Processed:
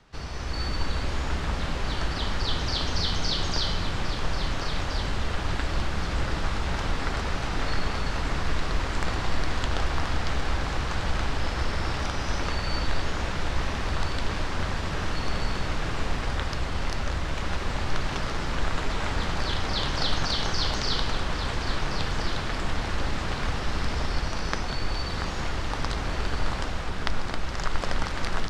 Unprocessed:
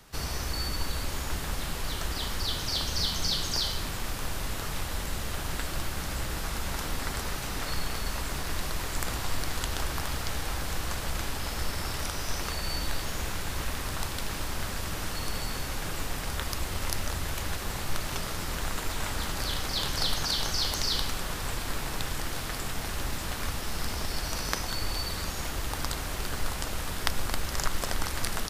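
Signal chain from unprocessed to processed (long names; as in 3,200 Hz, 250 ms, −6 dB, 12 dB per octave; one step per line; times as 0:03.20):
automatic gain control gain up to 6.5 dB
high-frequency loss of the air 130 metres
delay that swaps between a low-pass and a high-pass 685 ms, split 2,000 Hz, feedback 57%, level −5 dB
level −2 dB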